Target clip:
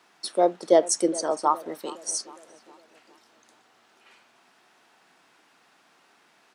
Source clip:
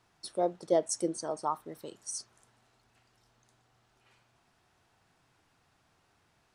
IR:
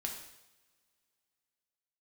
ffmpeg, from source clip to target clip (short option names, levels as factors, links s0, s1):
-filter_complex "[0:a]highpass=f=210:w=0.5412,highpass=f=210:w=1.3066,equalizer=f=2200:w=0.54:g=4,asplit=2[s0][s1];[s1]adelay=412,lowpass=f=1400:p=1,volume=0.133,asplit=2[s2][s3];[s3]adelay=412,lowpass=f=1400:p=1,volume=0.54,asplit=2[s4][s5];[s5]adelay=412,lowpass=f=1400:p=1,volume=0.54,asplit=2[s6][s7];[s7]adelay=412,lowpass=f=1400:p=1,volume=0.54,asplit=2[s8][s9];[s9]adelay=412,lowpass=f=1400:p=1,volume=0.54[s10];[s0][s2][s4][s6][s8][s10]amix=inputs=6:normalize=0,volume=2.51"